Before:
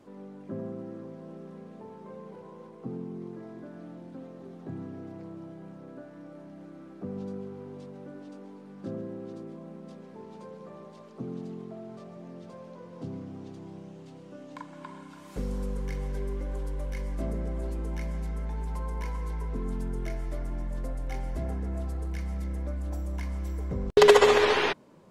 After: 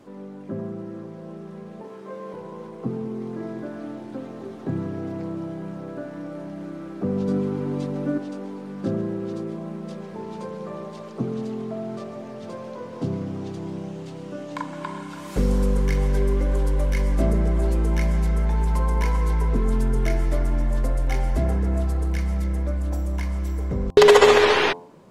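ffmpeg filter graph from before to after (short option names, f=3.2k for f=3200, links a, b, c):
-filter_complex "[0:a]asettb=1/sr,asplit=3[a][b][c];[a]atrim=end=1.824[d];[b]atrim=start=1.82:end=2.34,asetpts=PTS-STARTPTS,afade=t=in:d=0.004:c=qsin,afade=t=out:st=0.516:d=0.004:c=qsin,highpass=f=370:p=1,asplit=2[e][f];[f]adelay=21,volume=-2dB[g];[e][g]amix=inputs=2:normalize=0,atrim=end_sample=22932[h];[c]atrim=start=2.336[i];[d][h]acrossfade=d=0.004:c1=hsin:c2=qsin[j];[j][i]acrossfade=d=0.004:c1=qsin:c2=hsin,asettb=1/sr,asplit=3[k][l][m];[k]atrim=end=7.284[n];[l]atrim=start=7.28:end=8.18,asetpts=PTS-STARTPTS,afade=t=in:d=0.004:c=qsin,afade=t=out:st=0.896:d=0.004:c=qsin,equalizer=f=270:t=o:w=0.77:g=5.5,aecho=1:1:6.8:0.92,atrim=end_sample=39690[o];[m]atrim=start=8.176[p];[n][o]acrossfade=d=0.004:c1=hsin:c2=qsin[q];[q][p]acrossfade=d=0.004:c1=qsin:c2=hsin,bandreject=f=87.02:t=h:w=4,bandreject=f=174.04:t=h:w=4,bandreject=f=261.06:t=h:w=4,bandreject=f=348.08:t=h:w=4,bandreject=f=435.1:t=h:w=4,bandreject=f=522.12:t=h:w=4,bandreject=f=609.14:t=h:w=4,bandreject=f=696.16:t=h:w=4,bandreject=f=783.18:t=h:w=4,bandreject=f=870.2:t=h:w=4,bandreject=f=957.22:t=h:w=4,bandreject=f=1.04424k:t=h:w=4,bandreject=f=1.13126k:t=h:w=4,dynaudnorm=f=290:g=17:m=5.5dB,alimiter=level_in=7.5dB:limit=-1dB:release=50:level=0:latency=1,volume=-1dB"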